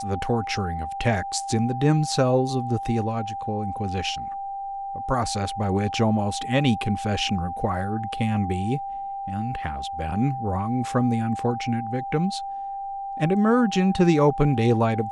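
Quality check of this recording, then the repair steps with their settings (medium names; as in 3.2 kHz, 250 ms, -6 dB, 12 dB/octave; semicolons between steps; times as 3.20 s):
whine 790 Hz -29 dBFS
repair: band-stop 790 Hz, Q 30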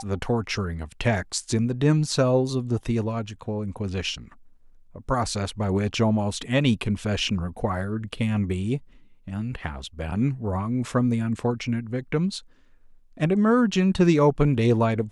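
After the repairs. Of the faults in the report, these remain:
nothing left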